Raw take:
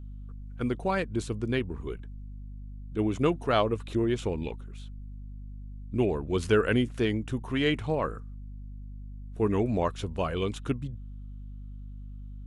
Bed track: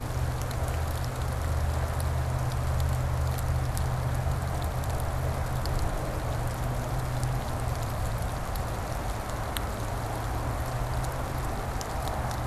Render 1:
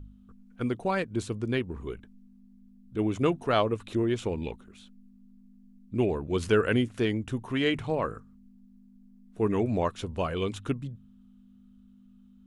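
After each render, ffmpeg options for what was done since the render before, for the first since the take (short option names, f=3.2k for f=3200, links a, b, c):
-af "bandreject=f=50:t=h:w=4,bandreject=f=100:t=h:w=4,bandreject=f=150:t=h:w=4"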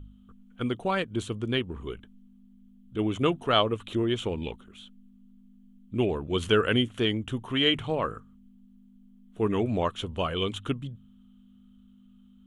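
-af "equalizer=f=1.25k:t=o:w=0.33:g=4,equalizer=f=3.15k:t=o:w=0.33:g=12,equalizer=f=5k:t=o:w=0.33:g=-8"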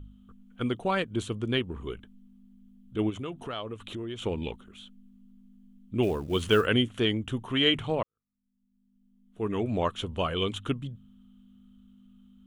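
-filter_complex "[0:a]asplit=3[a][b][c];[a]afade=t=out:st=3.09:d=0.02[d];[b]acompressor=threshold=-36dB:ratio=3:attack=3.2:release=140:knee=1:detection=peak,afade=t=in:st=3.09:d=0.02,afade=t=out:st=4.21:d=0.02[e];[c]afade=t=in:st=4.21:d=0.02[f];[d][e][f]amix=inputs=3:normalize=0,asplit=3[g][h][i];[g]afade=t=out:st=6.02:d=0.02[j];[h]acrusher=bits=7:mode=log:mix=0:aa=0.000001,afade=t=in:st=6.02:d=0.02,afade=t=out:st=6.65:d=0.02[k];[i]afade=t=in:st=6.65:d=0.02[l];[j][k][l]amix=inputs=3:normalize=0,asplit=2[m][n];[m]atrim=end=8.03,asetpts=PTS-STARTPTS,afade=t=out:st=8.026:d=0.004:c=hsin[o];[n]atrim=start=8.03,asetpts=PTS-STARTPTS,afade=t=in:d=1.85:c=qua[p];[o][p]concat=n=2:v=0:a=1"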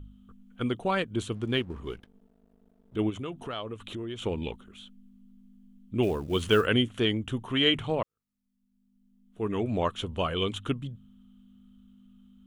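-filter_complex "[0:a]asettb=1/sr,asplit=3[a][b][c];[a]atrim=end=1.344[d];[b]atrim=start=1.34:end=2.96,asetpts=PTS-STARTPTS,afade=t=in:d=0.004:c=qsin,afade=t=out:st=1.616:d=0.004:c=qsin,aeval=exprs='sgn(val(0))*max(abs(val(0))-0.00178,0)':c=same[e];[c]atrim=start=2.956[f];[d][e]acrossfade=d=0.004:c1=hsin:c2=qsin[g];[g][f]acrossfade=d=0.004:c1=qsin:c2=hsin"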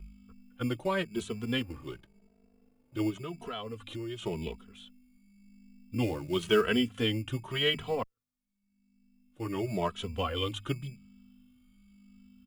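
-filter_complex "[0:a]acrossover=split=280[a][b];[a]acrusher=samples=18:mix=1:aa=0.000001[c];[c][b]amix=inputs=2:normalize=0,asplit=2[d][e];[e]adelay=2.7,afreqshift=0.92[f];[d][f]amix=inputs=2:normalize=1"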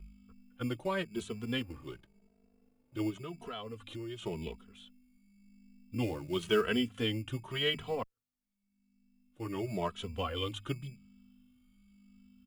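-af "volume=-3.5dB"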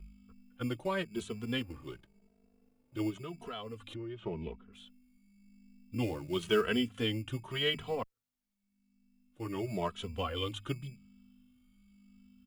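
-filter_complex "[0:a]asettb=1/sr,asplit=3[a][b][c];[a]atrim=end=3.944[d];[b]atrim=start=3.94:end=4.73,asetpts=PTS-STARTPTS,afade=t=in:d=0.004:c=qsin,afade=t=out:st=0.786:d=0.004:c=qsin,lowpass=1.9k[e];[c]atrim=start=4.726[f];[d][e]acrossfade=d=0.004:c1=hsin:c2=qsin[g];[g][f]acrossfade=d=0.004:c1=qsin:c2=hsin"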